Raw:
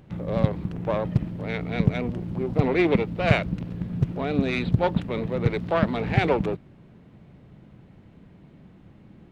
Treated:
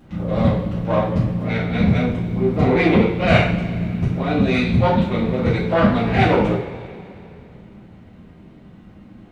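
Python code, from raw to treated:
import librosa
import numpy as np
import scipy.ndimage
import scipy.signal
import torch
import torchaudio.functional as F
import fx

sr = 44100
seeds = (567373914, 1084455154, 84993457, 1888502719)

y = fx.rev_double_slope(x, sr, seeds[0], early_s=0.5, late_s=2.8, knee_db=-18, drr_db=-9.5)
y = y * librosa.db_to_amplitude(-3.0)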